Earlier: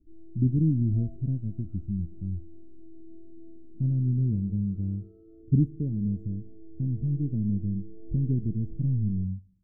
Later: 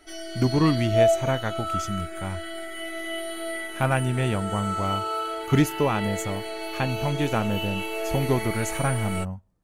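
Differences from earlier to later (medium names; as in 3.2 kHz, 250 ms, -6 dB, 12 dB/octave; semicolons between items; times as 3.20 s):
speech: send -11.5 dB; master: remove inverse Chebyshev low-pass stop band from 850 Hz, stop band 60 dB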